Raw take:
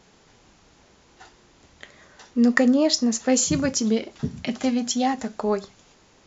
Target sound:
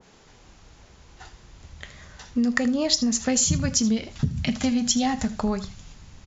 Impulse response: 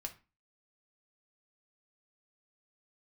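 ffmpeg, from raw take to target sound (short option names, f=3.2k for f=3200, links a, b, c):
-filter_complex "[0:a]asubboost=boost=11:cutoff=120,acompressor=threshold=-22dB:ratio=6,asplit=2[a][b];[b]aecho=0:1:79:0.15[c];[a][c]amix=inputs=2:normalize=0,adynamicequalizer=threshold=0.00447:dfrequency=2000:dqfactor=0.7:tfrequency=2000:tqfactor=0.7:attack=5:release=100:ratio=0.375:range=2:mode=boostabove:tftype=highshelf,volume=2dB"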